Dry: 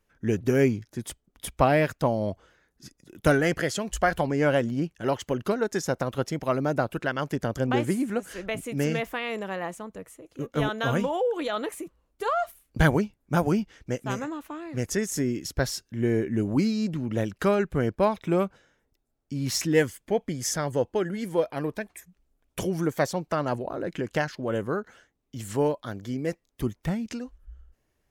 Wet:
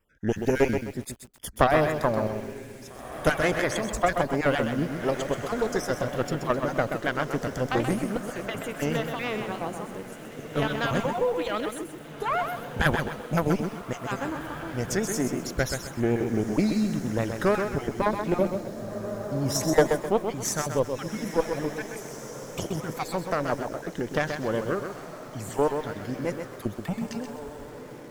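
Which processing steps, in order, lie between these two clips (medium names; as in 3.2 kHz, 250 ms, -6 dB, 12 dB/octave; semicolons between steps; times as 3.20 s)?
random holes in the spectrogram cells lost 26%; Chebyshev shaper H 2 -6 dB, 6 -26 dB, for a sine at -6.5 dBFS; echo that smears into a reverb 1757 ms, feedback 41%, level -11.5 dB; vibrato 6.4 Hz 54 cents; 18.41–19.85 s: fifteen-band graphic EQ 100 Hz +4 dB, 630 Hz +9 dB, 2.5 kHz -10 dB; bit-crushed delay 129 ms, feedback 35%, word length 8-bit, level -6.5 dB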